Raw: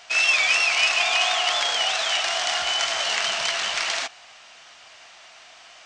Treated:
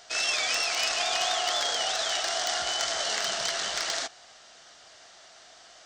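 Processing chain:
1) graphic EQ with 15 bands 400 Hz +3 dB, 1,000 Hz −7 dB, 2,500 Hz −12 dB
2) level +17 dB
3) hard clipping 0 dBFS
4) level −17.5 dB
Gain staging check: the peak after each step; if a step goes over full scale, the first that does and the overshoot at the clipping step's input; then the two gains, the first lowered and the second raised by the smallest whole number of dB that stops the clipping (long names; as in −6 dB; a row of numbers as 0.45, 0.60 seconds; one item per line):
−10.0, +7.0, 0.0, −17.5 dBFS
step 2, 7.0 dB
step 2 +10 dB, step 4 −10.5 dB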